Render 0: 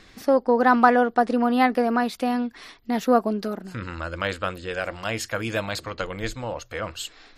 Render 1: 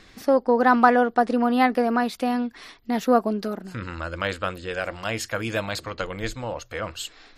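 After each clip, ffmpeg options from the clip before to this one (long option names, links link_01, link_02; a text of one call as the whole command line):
ffmpeg -i in.wav -af anull out.wav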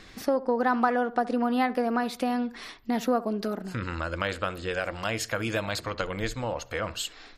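ffmpeg -i in.wav -filter_complex "[0:a]asplit=2[link_01][link_02];[link_02]adelay=68,lowpass=frequency=1500:poles=1,volume=-17.5dB,asplit=2[link_03][link_04];[link_04]adelay=68,lowpass=frequency=1500:poles=1,volume=0.34,asplit=2[link_05][link_06];[link_06]adelay=68,lowpass=frequency=1500:poles=1,volume=0.34[link_07];[link_01][link_03][link_05][link_07]amix=inputs=4:normalize=0,acompressor=threshold=-29dB:ratio=2,volume=1.5dB" out.wav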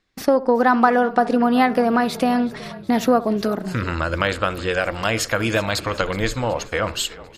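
ffmpeg -i in.wav -filter_complex "[0:a]agate=range=-31dB:threshold=-40dB:ratio=16:detection=peak,asplit=6[link_01][link_02][link_03][link_04][link_05][link_06];[link_02]adelay=372,afreqshift=-35,volume=-19dB[link_07];[link_03]adelay=744,afreqshift=-70,volume=-23.4dB[link_08];[link_04]adelay=1116,afreqshift=-105,volume=-27.9dB[link_09];[link_05]adelay=1488,afreqshift=-140,volume=-32.3dB[link_10];[link_06]adelay=1860,afreqshift=-175,volume=-36.7dB[link_11];[link_01][link_07][link_08][link_09][link_10][link_11]amix=inputs=6:normalize=0,volume=8.5dB" out.wav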